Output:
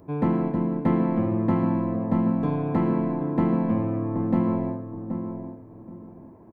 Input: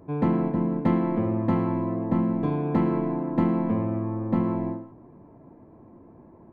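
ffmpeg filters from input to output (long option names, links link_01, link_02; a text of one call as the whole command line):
ffmpeg -i in.wav -filter_complex "[0:a]acrossover=split=2600[link_01][link_02];[link_02]acompressor=threshold=-58dB:ratio=4:attack=1:release=60[link_03];[link_01][link_03]amix=inputs=2:normalize=0,crystalizer=i=1:c=0,asplit=2[link_04][link_05];[link_05]adelay=776,lowpass=frequency=880:poles=1,volume=-7dB,asplit=2[link_06][link_07];[link_07]adelay=776,lowpass=frequency=880:poles=1,volume=0.28,asplit=2[link_08][link_09];[link_09]adelay=776,lowpass=frequency=880:poles=1,volume=0.28[link_10];[link_04][link_06][link_08][link_10]amix=inputs=4:normalize=0" out.wav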